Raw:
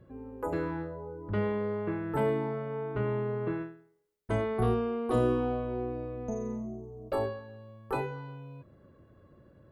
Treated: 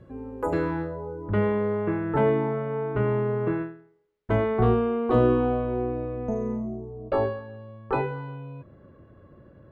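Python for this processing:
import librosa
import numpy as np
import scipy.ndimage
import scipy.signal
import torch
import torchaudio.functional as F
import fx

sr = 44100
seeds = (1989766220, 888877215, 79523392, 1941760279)

y = fx.lowpass(x, sr, hz=fx.steps((0.0, 9800.0), (1.26, 2900.0)), slope=12)
y = y * 10.0 ** (6.5 / 20.0)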